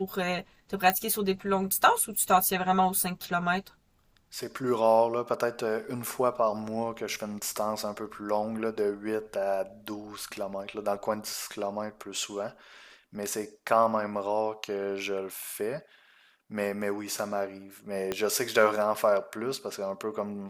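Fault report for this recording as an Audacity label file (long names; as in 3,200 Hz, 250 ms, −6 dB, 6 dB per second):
0.900000	0.900000	click −11 dBFS
18.120000	18.120000	click −15 dBFS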